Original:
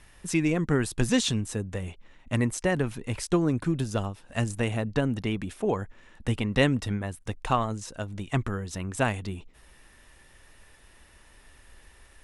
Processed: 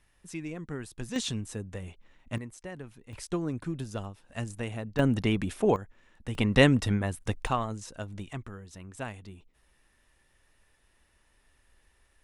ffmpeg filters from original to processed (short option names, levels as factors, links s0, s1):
-af "asetnsamples=n=441:p=0,asendcmd='1.16 volume volume -6dB;2.38 volume volume -16dB;3.13 volume volume -7.5dB;4.99 volume volume 2.5dB;5.76 volume volume -8dB;6.35 volume volume 2.5dB;7.47 volume volume -4dB;8.33 volume volume -12dB',volume=0.224"